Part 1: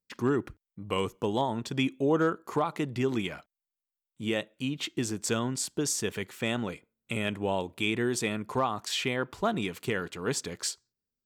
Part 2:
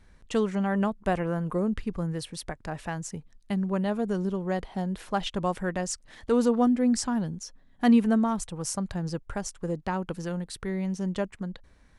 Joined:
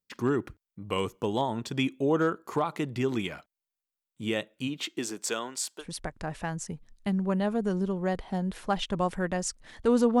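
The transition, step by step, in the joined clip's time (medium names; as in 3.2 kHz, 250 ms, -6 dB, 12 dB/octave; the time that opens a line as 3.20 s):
part 1
4.67–5.85 s: high-pass 170 Hz -> 810 Hz
5.82 s: go over to part 2 from 2.26 s, crossfade 0.06 s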